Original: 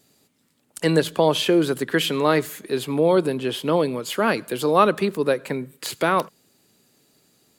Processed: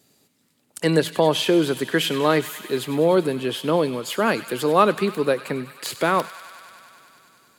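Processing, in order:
high-pass filter 59 Hz
on a send: delay with a high-pass on its return 98 ms, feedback 82%, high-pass 1,500 Hz, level −13.5 dB

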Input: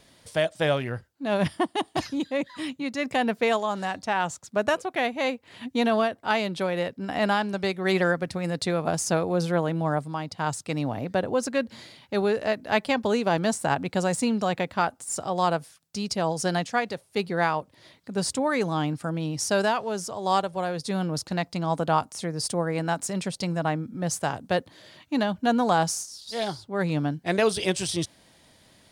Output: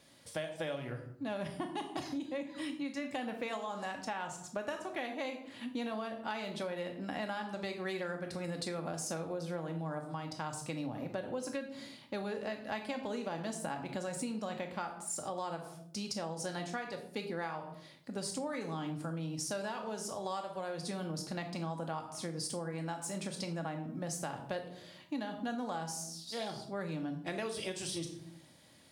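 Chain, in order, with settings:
high-pass filter 84 Hz
on a send at −4.5 dB: high-shelf EQ 5,600 Hz +8 dB + convolution reverb RT60 0.55 s, pre-delay 4 ms
on the sum: downward compressor 6 to 1, threshold −29 dBFS, peak gain reduction 13 dB
level −6.5 dB

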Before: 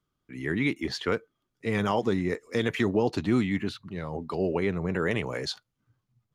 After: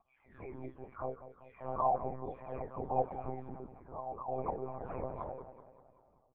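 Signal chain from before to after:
every frequency bin delayed by itself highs early, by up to 685 ms
parametric band 450 Hz +5.5 dB 0.59 octaves
hum removal 157.7 Hz, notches 5
upward compression, threshold −38 dBFS
formant resonators in series a
high-frequency loss of the air 150 metres
on a send: repeating echo 193 ms, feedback 55%, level −13 dB
on the sum: one-pitch LPC vocoder at 8 kHz 130 Hz
level +8.5 dB

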